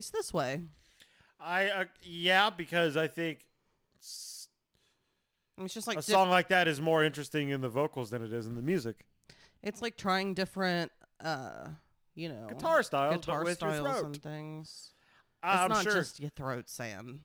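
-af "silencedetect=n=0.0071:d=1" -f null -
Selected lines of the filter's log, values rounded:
silence_start: 4.44
silence_end: 5.58 | silence_duration: 1.14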